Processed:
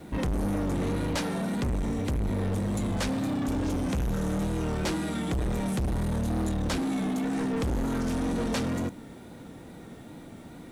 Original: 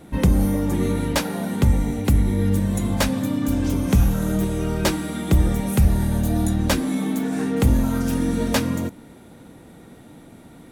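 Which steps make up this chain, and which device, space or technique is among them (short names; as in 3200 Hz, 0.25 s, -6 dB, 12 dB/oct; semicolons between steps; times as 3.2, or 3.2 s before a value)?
compact cassette (soft clip -25.5 dBFS, distortion -5 dB; LPF 8900 Hz 12 dB/oct; wow and flutter; white noise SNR 40 dB)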